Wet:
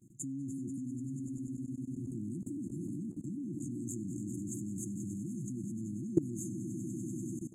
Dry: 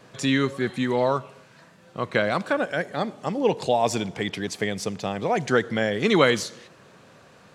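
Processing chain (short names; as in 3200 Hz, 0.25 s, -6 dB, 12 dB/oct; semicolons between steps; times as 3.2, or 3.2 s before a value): swelling echo 97 ms, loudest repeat 5, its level -13.5 dB; FFT band-reject 360–6300 Hz; level quantiser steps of 19 dB; gain -1 dB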